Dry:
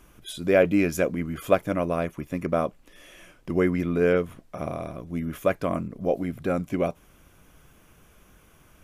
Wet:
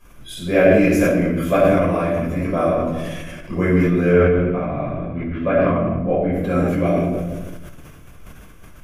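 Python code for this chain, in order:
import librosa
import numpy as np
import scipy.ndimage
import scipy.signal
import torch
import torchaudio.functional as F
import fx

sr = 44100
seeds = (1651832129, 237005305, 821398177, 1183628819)

y = fx.lowpass(x, sr, hz=3000.0, slope=24, at=(4.08, 6.31), fade=0.02)
y = fx.room_shoebox(y, sr, seeds[0], volume_m3=510.0, walls='mixed', distance_m=5.5)
y = fx.sustainer(y, sr, db_per_s=25.0)
y = F.gain(torch.from_numpy(y), -6.5).numpy()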